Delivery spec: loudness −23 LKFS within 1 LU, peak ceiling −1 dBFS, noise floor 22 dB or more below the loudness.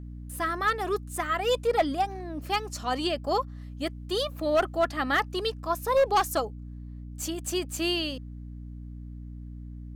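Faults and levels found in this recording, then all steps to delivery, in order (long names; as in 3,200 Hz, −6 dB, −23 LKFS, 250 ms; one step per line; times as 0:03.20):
share of clipped samples 0.5%; peaks flattened at −17.0 dBFS; mains hum 60 Hz; hum harmonics up to 300 Hz; level of the hum −38 dBFS; integrated loudness −28.0 LKFS; sample peak −17.0 dBFS; target loudness −23.0 LKFS
→ clipped peaks rebuilt −17 dBFS
mains-hum notches 60/120/180/240/300 Hz
level +5 dB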